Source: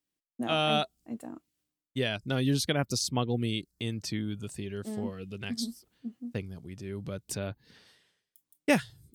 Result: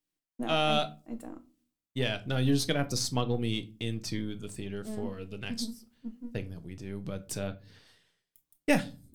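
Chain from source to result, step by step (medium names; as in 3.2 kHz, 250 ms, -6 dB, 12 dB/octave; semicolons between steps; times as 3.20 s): partial rectifier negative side -3 dB; simulated room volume 180 m³, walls furnished, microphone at 0.53 m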